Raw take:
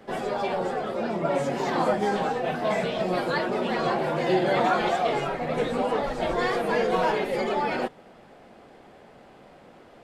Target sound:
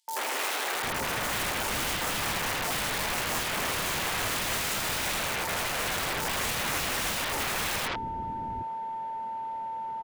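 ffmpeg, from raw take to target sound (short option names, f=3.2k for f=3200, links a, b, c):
-filter_complex "[0:a]aeval=exprs='val(0)+0.0251*sin(2*PI*900*n/s)':c=same,aeval=exprs='(mod(16.8*val(0)+1,2)-1)/16.8':c=same,acrossover=split=330|4800[a][b][c];[b]adelay=80[d];[a]adelay=750[e];[e][d][c]amix=inputs=3:normalize=0"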